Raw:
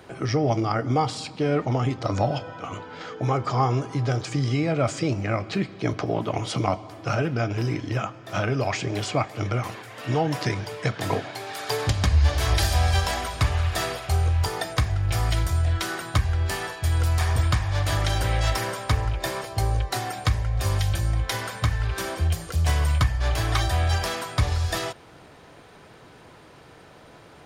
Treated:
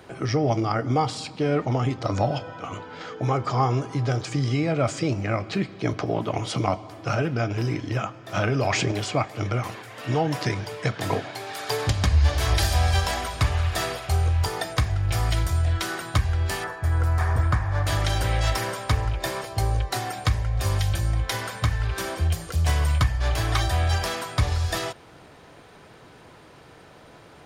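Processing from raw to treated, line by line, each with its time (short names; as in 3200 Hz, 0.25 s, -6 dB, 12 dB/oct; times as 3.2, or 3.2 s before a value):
8.37–8.92 fast leveller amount 70%
16.64–17.87 resonant high shelf 2200 Hz -9.5 dB, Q 1.5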